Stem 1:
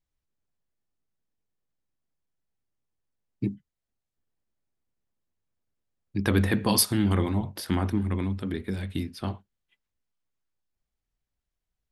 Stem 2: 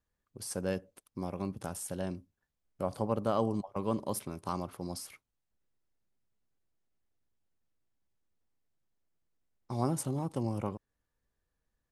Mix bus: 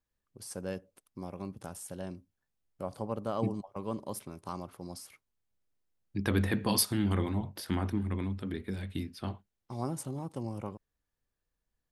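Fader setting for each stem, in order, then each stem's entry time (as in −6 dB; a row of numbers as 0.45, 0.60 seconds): −5.5, −4.0 decibels; 0.00, 0.00 seconds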